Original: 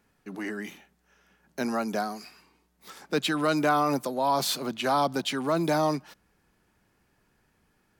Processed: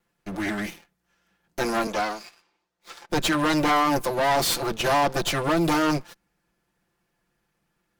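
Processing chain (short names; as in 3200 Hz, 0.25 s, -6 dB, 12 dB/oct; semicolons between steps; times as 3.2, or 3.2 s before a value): minimum comb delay 5.8 ms; 1.87–3.09 three-band isolator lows -13 dB, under 330 Hz, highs -14 dB, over 7200 Hz; sample leveller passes 2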